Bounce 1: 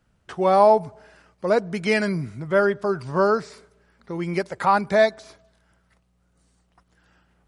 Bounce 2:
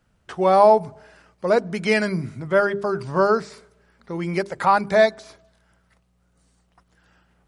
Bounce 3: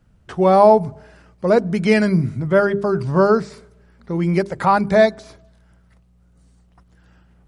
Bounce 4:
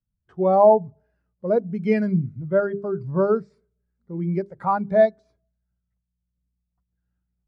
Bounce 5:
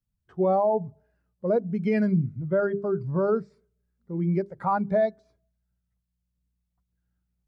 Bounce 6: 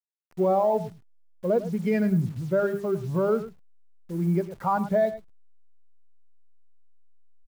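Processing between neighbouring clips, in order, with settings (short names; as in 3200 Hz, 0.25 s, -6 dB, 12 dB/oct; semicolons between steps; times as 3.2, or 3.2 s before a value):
notches 50/100/150/200/250/300/350/400 Hz; gain +1.5 dB
low shelf 330 Hz +11.5 dB
spectral expander 1.5:1; gain -3.5 dB
limiter -15.5 dBFS, peak gain reduction 10.5 dB
level-crossing sampler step -45.5 dBFS; echo 0.105 s -14 dB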